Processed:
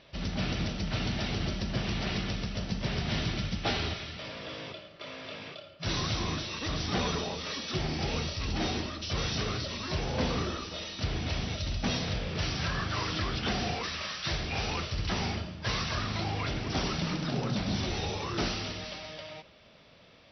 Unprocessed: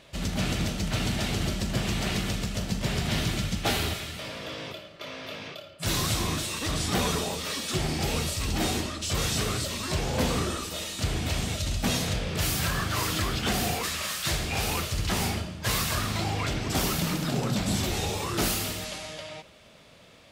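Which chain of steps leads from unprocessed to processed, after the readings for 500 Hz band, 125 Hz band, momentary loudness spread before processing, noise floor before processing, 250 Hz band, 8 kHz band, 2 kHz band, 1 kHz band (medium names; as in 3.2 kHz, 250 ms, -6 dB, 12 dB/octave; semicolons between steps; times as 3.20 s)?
-3.5 dB, -3.5 dB, 9 LU, -52 dBFS, -3.5 dB, -12.0 dB, -3.5 dB, -3.5 dB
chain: brick-wall FIR low-pass 6 kHz; trim -3.5 dB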